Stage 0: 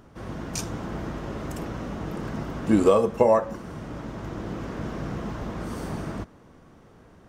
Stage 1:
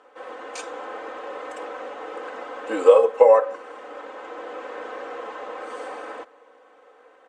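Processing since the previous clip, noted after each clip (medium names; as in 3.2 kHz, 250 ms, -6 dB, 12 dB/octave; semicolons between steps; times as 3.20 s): elliptic band-pass 440–7700 Hz, stop band 40 dB; peaking EQ 5.7 kHz -13.5 dB 0.95 oct; comb 3.9 ms, depth 93%; trim +2.5 dB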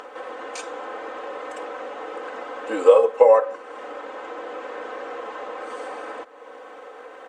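upward compressor, threshold -29 dBFS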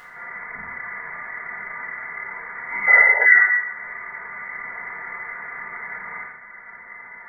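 frequency inversion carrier 2.5 kHz; two-slope reverb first 0.87 s, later 2.5 s, from -21 dB, DRR -9 dB; painted sound noise, 2.87–3.26 s, 410–1000 Hz -19 dBFS; trim -9.5 dB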